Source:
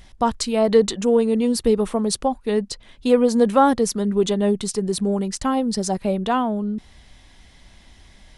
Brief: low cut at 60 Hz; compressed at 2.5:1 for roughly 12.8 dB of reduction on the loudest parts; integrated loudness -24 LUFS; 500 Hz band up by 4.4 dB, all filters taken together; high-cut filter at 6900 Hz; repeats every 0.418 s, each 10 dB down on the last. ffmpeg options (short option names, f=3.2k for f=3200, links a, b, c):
-af "highpass=60,lowpass=6.9k,equalizer=f=500:t=o:g=5,acompressor=threshold=-26dB:ratio=2.5,aecho=1:1:418|836|1254|1672:0.316|0.101|0.0324|0.0104,volume=2.5dB"